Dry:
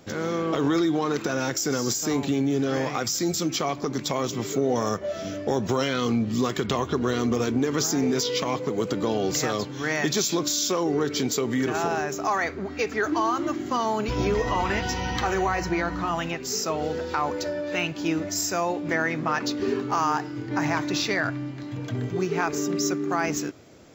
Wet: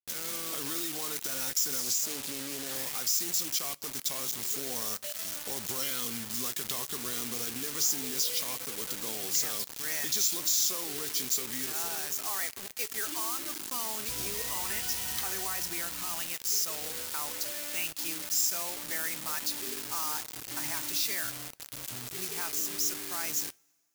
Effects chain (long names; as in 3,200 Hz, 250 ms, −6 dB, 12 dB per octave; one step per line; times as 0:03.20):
bit reduction 5 bits
first-order pre-emphasis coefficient 0.9
coupled-rooms reverb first 0.23 s, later 2 s, from −22 dB, DRR 18 dB
0:01.80–0:02.76: highs frequency-modulated by the lows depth 0.33 ms